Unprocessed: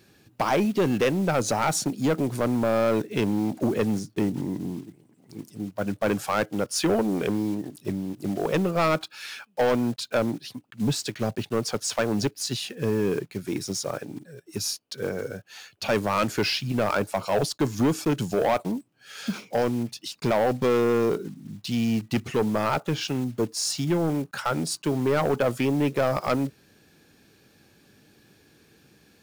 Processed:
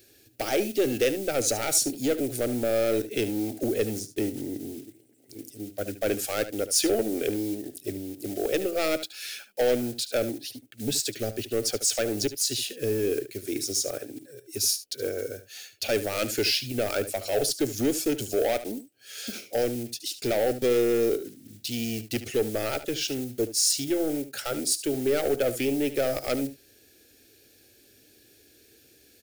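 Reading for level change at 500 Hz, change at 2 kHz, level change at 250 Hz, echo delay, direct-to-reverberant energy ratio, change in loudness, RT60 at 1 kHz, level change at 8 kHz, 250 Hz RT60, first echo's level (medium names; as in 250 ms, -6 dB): -0.5 dB, -3.0 dB, -4.5 dB, 73 ms, no reverb, -1.0 dB, no reverb, +5.5 dB, no reverb, -13.5 dB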